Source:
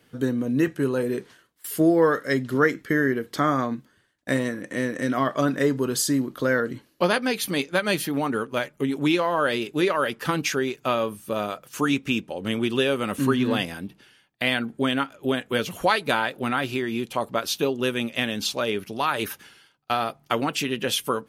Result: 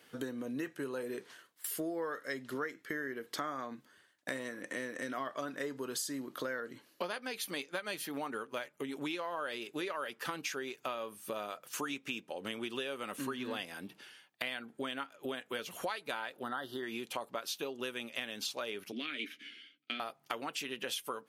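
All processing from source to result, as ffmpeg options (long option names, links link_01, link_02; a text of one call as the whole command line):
ffmpeg -i in.wav -filter_complex "[0:a]asettb=1/sr,asplit=3[link_01][link_02][link_03];[link_01]atrim=end=16.434[link_04];[link_02]atrim=start=16.43:end=16.83,asetpts=PTS-STARTPTS,afade=type=in:duration=0.004:curve=qsin,afade=type=out:start_time=0.396:duration=0.004:curve=qsin,asuperstop=centerf=2400:order=8:qfactor=2.1,equalizer=frequency=7100:width=1.5:gain=-12[link_05];[link_03]atrim=start=16.826[link_06];[link_04][link_05]acrossfade=duration=0.004:curve1=hsin:curve2=qsin[link_07];[link_07][link_06]acrossfade=duration=0.004:curve1=qsin:curve2=hsin,asettb=1/sr,asplit=3[link_08][link_09][link_10];[link_08]atrim=end=18.924[link_11];[link_09]atrim=start=18.92:end=20,asetpts=PTS-STARTPTS,afade=type=in:duration=0.004:curve=qsin,afade=type=out:start_time=1.076:duration=0.004:curve=qsin,asplit=3[link_12][link_13][link_14];[link_12]bandpass=frequency=270:width_type=q:width=8,volume=0dB[link_15];[link_13]bandpass=frequency=2290:width_type=q:width=8,volume=-6dB[link_16];[link_14]bandpass=frequency=3010:width_type=q:width=8,volume=-9dB[link_17];[link_15][link_16][link_17]amix=inputs=3:normalize=0,asplit=2[link_18][link_19];[link_19]adelay=13,volume=-8dB[link_20];[link_18][link_20]amix=inputs=2:normalize=0,atrim=end_sample=47628,aeval=exprs='0.266*sin(PI/2*2.51*val(0)/0.266)':channel_layout=same[link_21];[link_10]atrim=start=19.996[link_22];[link_11][link_21]acrossfade=duration=0.004:curve1=hsin:curve2=qsin[link_23];[link_23][link_22]acrossfade=duration=0.004:curve1=qsin:curve2=hsin,highpass=frequency=160:poles=1,lowshelf=frequency=270:gain=-12,acompressor=threshold=-39dB:ratio=4,volume=1dB" out.wav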